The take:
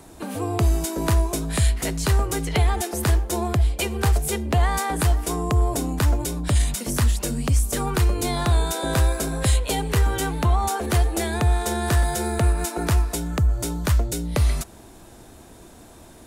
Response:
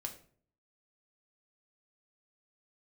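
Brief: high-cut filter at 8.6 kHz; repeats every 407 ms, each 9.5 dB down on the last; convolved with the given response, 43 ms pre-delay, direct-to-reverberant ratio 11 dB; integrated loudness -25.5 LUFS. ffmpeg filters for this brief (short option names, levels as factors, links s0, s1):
-filter_complex "[0:a]lowpass=8600,aecho=1:1:407|814|1221|1628:0.335|0.111|0.0365|0.012,asplit=2[s0][s1];[1:a]atrim=start_sample=2205,adelay=43[s2];[s1][s2]afir=irnorm=-1:irlink=0,volume=0.335[s3];[s0][s3]amix=inputs=2:normalize=0,volume=0.708"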